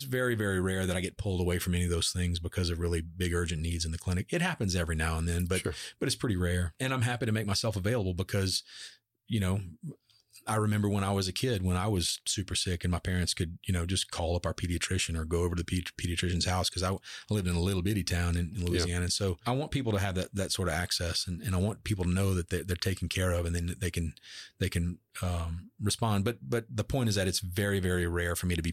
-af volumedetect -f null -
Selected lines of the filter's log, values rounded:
mean_volume: -30.9 dB
max_volume: -17.1 dB